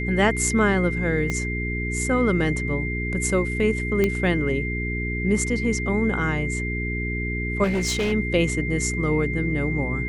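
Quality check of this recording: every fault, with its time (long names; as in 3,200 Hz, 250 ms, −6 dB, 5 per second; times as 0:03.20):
mains hum 60 Hz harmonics 7 −28 dBFS
whistle 2,100 Hz −29 dBFS
0:01.30: click −13 dBFS
0:04.04: click −9 dBFS
0:07.63–0:08.13: clipping −19.5 dBFS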